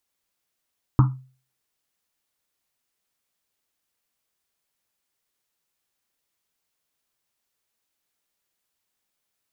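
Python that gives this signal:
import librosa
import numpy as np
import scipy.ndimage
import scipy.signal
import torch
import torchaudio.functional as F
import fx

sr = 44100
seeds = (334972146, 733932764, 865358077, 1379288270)

y = fx.risset_drum(sr, seeds[0], length_s=1.1, hz=130.0, decay_s=0.4, noise_hz=1100.0, noise_width_hz=460.0, noise_pct=15)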